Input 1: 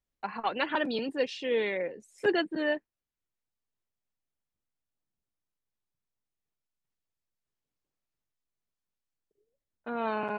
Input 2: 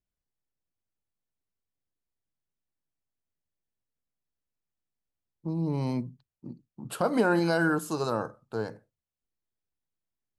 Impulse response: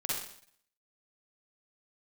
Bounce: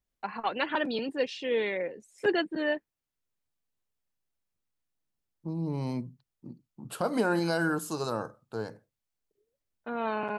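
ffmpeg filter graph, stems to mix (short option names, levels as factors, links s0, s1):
-filter_complex "[0:a]volume=1[s0];[1:a]adynamicequalizer=threshold=0.00794:dfrequency=3100:dqfactor=0.7:tfrequency=3100:tqfactor=0.7:attack=5:release=100:ratio=0.375:range=2:mode=boostabove:tftype=highshelf,volume=0.708[s1];[s0][s1]amix=inputs=2:normalize=0"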